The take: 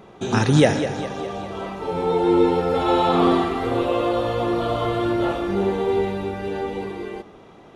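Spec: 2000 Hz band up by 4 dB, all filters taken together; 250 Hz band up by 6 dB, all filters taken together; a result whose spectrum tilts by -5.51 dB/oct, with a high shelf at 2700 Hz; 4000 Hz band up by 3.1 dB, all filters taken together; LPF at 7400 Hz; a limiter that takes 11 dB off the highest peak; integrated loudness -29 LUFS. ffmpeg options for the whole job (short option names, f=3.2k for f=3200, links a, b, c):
-af "lowpass=7.4k,equalizer=f=250:t=o:g=8.5,equalizer=f=2k:t=o:g=5.5,highshelf=f=2.7k:g=-5,equalizer=f=4k:t=o:g=6,volume=-9dB,alimiter=limit=-18dB:level=0:latency=1"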